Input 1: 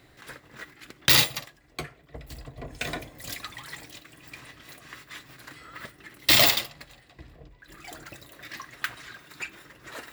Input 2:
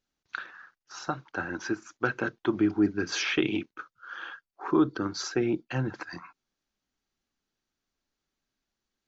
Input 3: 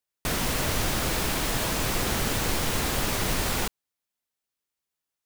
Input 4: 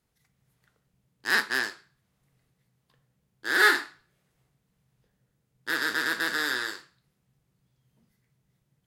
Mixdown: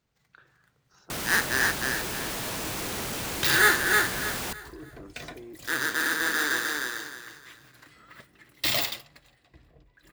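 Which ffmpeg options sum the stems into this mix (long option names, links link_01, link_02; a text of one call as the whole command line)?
ffmpeg -i stem1.wav -i stem2.wav -i stem3.wav -i stem4.wav -filter_complex "[0:a]adelay=2350,volume=-8dB[link_01];[1:a]equalizer=frequency=420:width_type=o:width=1.2:gain=12,alimiter=limit=-18.5dB:level=0:latency=1,volume=-19.5dB[link_02];[2:a]highpass=frequency=110:poles=1,volume=33dB,asoftclip=hard,volume=-33dB,adelay=850,volume=1.5dB[link_03];[3:a]acrusher=samples=4:mix=1:aa=0.000001,volume=0dB,asplit=2[link_04][link_05];[link_05]volume=-3dB,aecho=0:1:307|614|921|1228:1|0.3|0.09|0.027[link_06];[link_01][link_02][link_03][link_04][link_06]amix=inputs=5:normalize=0" out.wav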